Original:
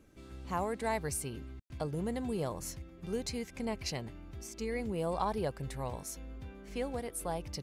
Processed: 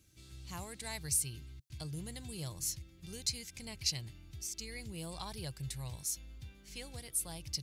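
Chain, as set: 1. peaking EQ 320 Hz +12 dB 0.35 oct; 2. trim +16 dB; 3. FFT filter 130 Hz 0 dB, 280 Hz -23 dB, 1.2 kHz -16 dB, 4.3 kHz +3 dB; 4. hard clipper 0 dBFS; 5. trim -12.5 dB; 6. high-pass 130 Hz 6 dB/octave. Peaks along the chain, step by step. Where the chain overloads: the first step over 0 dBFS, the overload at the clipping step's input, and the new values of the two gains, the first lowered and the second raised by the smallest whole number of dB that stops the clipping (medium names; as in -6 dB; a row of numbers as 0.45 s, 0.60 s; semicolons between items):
-18.5 dBFS, -2.5 dBFS, -4.0 dBFS, -4.0 dBFS, -16.5 dBFS, -16.5 dBFS; nothing clips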